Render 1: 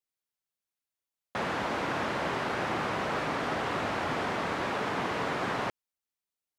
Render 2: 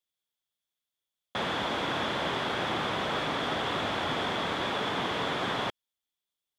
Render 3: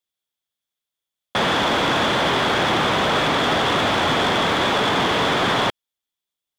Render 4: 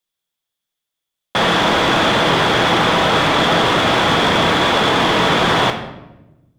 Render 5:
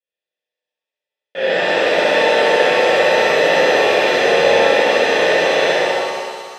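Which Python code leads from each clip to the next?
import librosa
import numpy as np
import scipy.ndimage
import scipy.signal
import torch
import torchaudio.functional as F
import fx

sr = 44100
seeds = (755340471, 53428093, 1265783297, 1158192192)

y1 = fx.peak_eq(x, sr, hz=3400.0, db=14.0, octaves=0.23)
y2 = fx.leveller(y1, sr, passes=2)
y2 = y2 * 10.0 ** (6.0 / 20.0)
y3 = fx.room_shoebox(y2, sr, seeds[0], volume_m3=410.0, walls='mixed', distance_m=0.66)
y3 = y3 * 10.0 ** (3.5 / 20.0)
y4 = fx.vowel_filter(y3, sr, vowel='e')
y4 = fx.room_flutter(y4, sr, wall_m=11.0, rt60_s=1.2)
y4 = fx.rev_shimmer(y4, sr, seeds[1], rt60_s=1.7, semitones=7, shimmer_db=-8, drr_db=-10.5)
y4 = y4 * 10.0 ** (-1.5 / 20.0)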